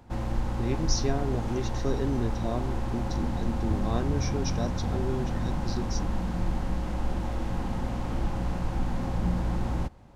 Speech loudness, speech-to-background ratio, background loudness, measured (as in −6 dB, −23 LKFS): −34.0 LKFS, −2.5 dB, −31.5 LKFS